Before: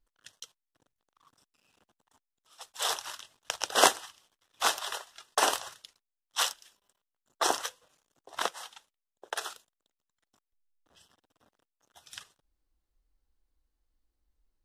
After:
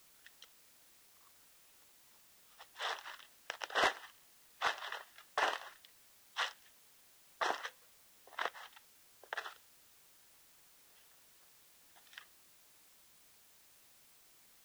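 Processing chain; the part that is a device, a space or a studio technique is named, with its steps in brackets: drive-through speaker (band-pass 360–3400 Hz; peaking EQ 1.9 kHz +8 dB 0.43 oct; hard clipper -15.5 dBFS, distortion -12 dB; white noise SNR 19 dB); trim -7.5 dB

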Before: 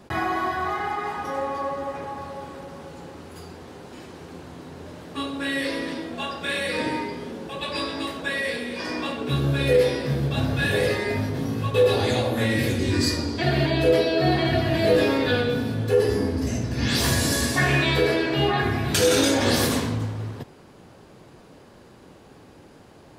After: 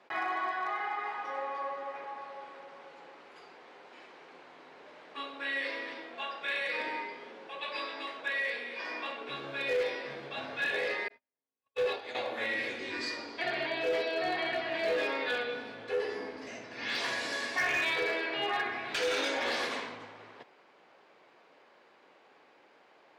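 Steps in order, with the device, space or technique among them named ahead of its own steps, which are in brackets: megaphone (band-pass 600–3600 Hz; peaking EQ 2.2 kHz +5 dB 0.43 oct; hard clipper -18.5 dBFS, distortion -21 dB); 11.08–12.15 s: gate -25 dBFS, range -54 dB; trim -6.5 dB

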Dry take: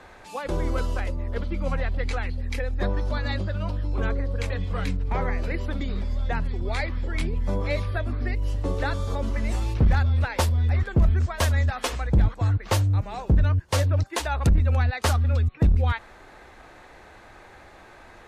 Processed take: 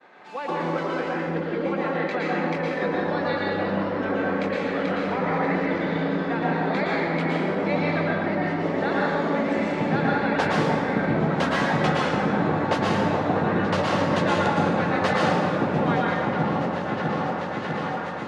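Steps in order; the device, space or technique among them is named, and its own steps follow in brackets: high-pass 160 Hz 24 dB/octave; hearing-loss simulation (low-pass 3.5 kHz 12 dB/octave; expander -45 dBFS); peaking EQ 76 Hz -10 dB 1.1 oct; delay with an opening low-pass 650 ms, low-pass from 400 Hz, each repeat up 1 oct, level 0 dB; plate-style reverb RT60 1.9 s, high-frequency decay 0.65×, pre-delay 100 ms, DRR -5 dB

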